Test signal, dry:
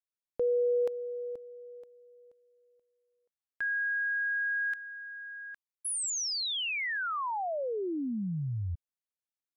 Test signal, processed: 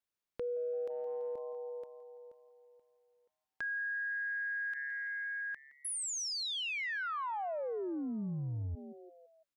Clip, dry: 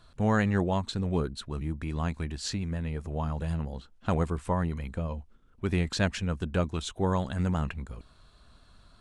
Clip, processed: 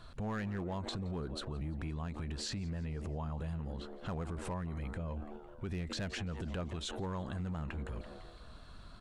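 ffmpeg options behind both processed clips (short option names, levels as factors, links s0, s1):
-filter_complex "[0:a]asplit=2[s0][s1];[s1]adynamicsmooth=sensitivity=1.5:basefreq=6100,volume=0.708[s2];[s0][s2]amix=inputs=2:normalize=0,asplit=5[s3][s4][s5][s6][s7];[s4]adelay=168,afreqshift=140,volume=0.0944[s8];[s5]adelay=336,afreqshift=280,volume=0.049[s9];[s6]adelay=504,afreqshift=420,volume=0.0254[s10];[s7]adelay=672,afreqshift=560,volume=0.0133[s11];[s3][s8][s9][s10][s11]amix=inputs=5:normalize=0,asoftclip=type=hard:threshold=0.158,acompressor=threshold=0.0158:ratio=6:attack=1.7:release=51:knee=1:detection=rms"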